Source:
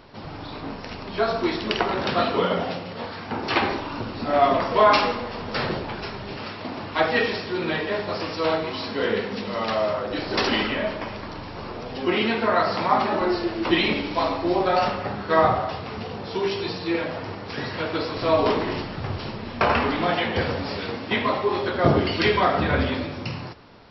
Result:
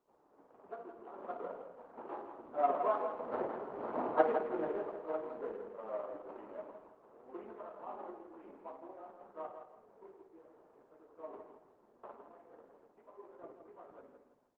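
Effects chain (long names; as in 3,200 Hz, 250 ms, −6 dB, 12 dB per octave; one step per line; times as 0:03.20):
running median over 25 samples
source passing by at 0:06.51, 7 m/s, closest 3.5 metres
automatic gain control gain up to 6 dB
time stretch by overlap-add 0.61×, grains 100 ms
amplitude tremolo 1.5 Hz, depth 48%
flat-topped band-pass 740 Hz, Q 0.62
high-frequency loss of the air 89 metres
repeating echo 164 ms, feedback 30%, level −8 dB
level −2.5 dB
Opus 24 kbit/s 48,000 Hz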